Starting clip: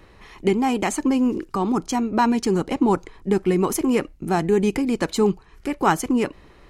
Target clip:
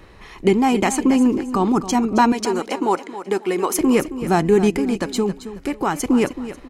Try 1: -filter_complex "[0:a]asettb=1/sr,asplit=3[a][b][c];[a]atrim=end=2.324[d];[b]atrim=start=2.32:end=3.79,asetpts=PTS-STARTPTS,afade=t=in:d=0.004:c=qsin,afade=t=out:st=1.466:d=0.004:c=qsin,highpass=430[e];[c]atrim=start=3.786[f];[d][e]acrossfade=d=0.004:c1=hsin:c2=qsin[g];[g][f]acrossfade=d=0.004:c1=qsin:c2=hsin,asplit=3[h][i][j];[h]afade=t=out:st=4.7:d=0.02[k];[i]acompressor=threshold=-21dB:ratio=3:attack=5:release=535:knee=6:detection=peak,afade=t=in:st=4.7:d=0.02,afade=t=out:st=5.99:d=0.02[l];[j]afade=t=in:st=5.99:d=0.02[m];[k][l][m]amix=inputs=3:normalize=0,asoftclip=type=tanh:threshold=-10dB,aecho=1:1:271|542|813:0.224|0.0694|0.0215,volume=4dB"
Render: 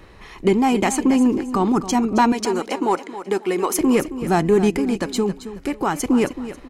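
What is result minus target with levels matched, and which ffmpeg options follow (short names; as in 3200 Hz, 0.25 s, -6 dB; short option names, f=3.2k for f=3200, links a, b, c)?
soft clip: distortion +15 dB
-filter_complex "[0:a]asettb=1/sr,asplit=3[a][b][c];[a]atrim=end=2.324[d];[b]atrim=start=2.32:end=3.79,asetpts=PTS-STARTPTS,afade=t=in:d=0.004:c=qsin,afade=t=out:st=1.466:d=0.004:c=qsin,highpass=430[e];[c]atrim=start=3.786[f];[d][e]acrossfade=d=0.004:c1=hsin:c2=qsin[g];[g][f]acrossfade=d=0.004:c1=qsin:c2=hsin,asplit=3[h][i][j];[h]afade=t=out:st=4.7:d=0.02[k];[i]acompressor=threshold=-21dB:ratio=3:attack=5:release=535:knee=6:detection=peak,afade=t=in:st=4.7:d=0.02,afade=t=out:st=5.99:d=0.02[l];[j]afade=t=in:st=5.99:d=0.02[m];[k][l][m]amix=inputs=3:normalize=0,asoftclip=type=tanh:threshold=-1.5dB,aecho=1:1:271|542|813:0.224|0.0694|0.0215,volume=4dB"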